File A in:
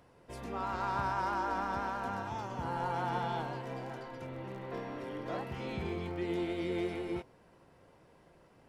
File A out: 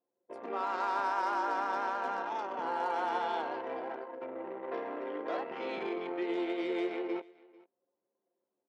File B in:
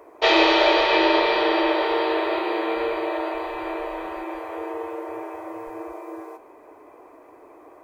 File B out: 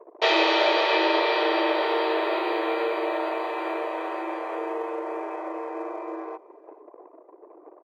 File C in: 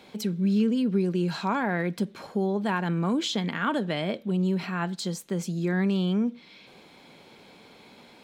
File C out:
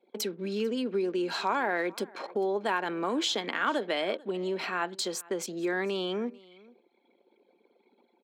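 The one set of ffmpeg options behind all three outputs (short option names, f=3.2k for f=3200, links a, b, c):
-af "anlmdn=0.158,highpass=f=320:w=0.5412,highpass=f=320:w=1.3066,acompressor=threshold=-41dB:ratio=1.5,aecho=1:1:444:0.0668,volume=6dB"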